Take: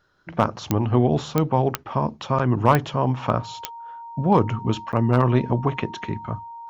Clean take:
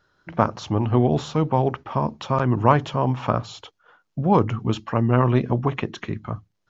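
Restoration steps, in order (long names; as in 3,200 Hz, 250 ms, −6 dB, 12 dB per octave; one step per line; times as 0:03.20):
clipped peaks rebuilt −5.5 dBFS
click removal
notch filter 930 Hz, Q 30
repair the gap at 0:04.92, 8.9 ms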